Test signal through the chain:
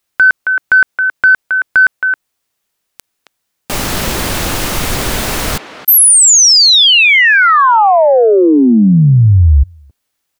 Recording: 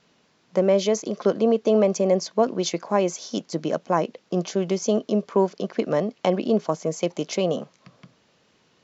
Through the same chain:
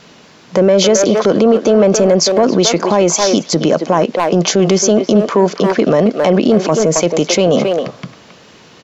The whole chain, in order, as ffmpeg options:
ffmpeg -i in.wav -filter_complex "[0:a]asplit=2[link_01][link_02];[link_02]adelay=270,highpass=300,lowpass=3400,asoftclip=type=hard:threshold=-17dB,volume=-11dB[link_03];[link_01][link_03]amix=inputs=2:normalize=0,acontrast=85,alimiter=level_in=15dB:limit=-1dB:release=50:level=0:latency=1,volume=-2dB" out.wav

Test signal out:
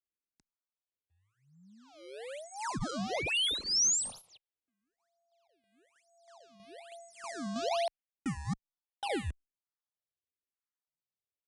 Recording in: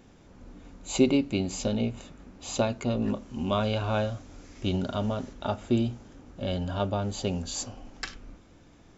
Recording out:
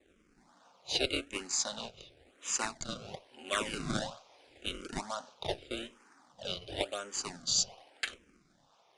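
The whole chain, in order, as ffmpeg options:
ffmpeg -i in.wav -filter_complex "[0:a]highpass=930,adynamicequalizer=threshold=0.00355:dfrequency=5200:dqfactor=0.76:tfrequency=5200:tqfactor=0.76:attack=5:release=100:ratio=0.375:range=3:mode=boostabove:tftype=bell,asplit=2[link_01][link_02];[link_02]acrusher=bits=5:mode=log:mix=0:aa=0.000001,volume=-4dB[link_03];[link_01][link_03]amix=inputs=2:normalize=0,adynamicsmooth=sensitivity=5.5:basefreq=2900,acrossover=split=2400[link_04][link_05];[link_04]acrusher=samples=28:mix=1:aa=0.000001:lfo=1:lforange=44.8:lforate=1.1[link_06];[link_06][link_05]amix=inputs=2:normalize=0,aresample=22050,aresample=44100,asplit=2[link_07][link_08];[link_08]afreqshift=-0.87[link_09];[link_07][link_09]amix=inputs=2:normalize=1" out.wav

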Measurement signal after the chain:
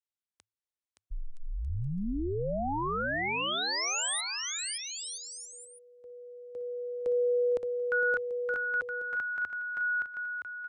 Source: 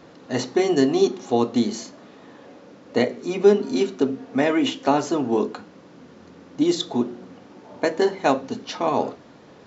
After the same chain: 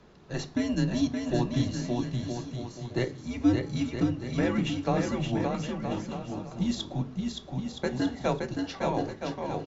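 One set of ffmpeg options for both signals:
ffmpeg -i in.wav -af "aresample=22050,aresample=44100,afreqshift=-110,aecho=1:1:570|969|1248|1444|1581:0.631|0.398|0.251|0.158|0.1,volume=-8.5dB" out.wav

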